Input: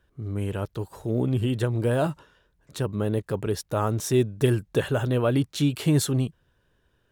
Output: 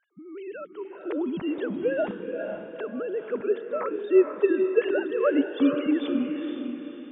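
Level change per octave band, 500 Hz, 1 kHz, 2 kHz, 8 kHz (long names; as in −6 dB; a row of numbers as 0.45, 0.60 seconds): +3.0 dB, −3.5 dB, +0.5 dB, below −40 dB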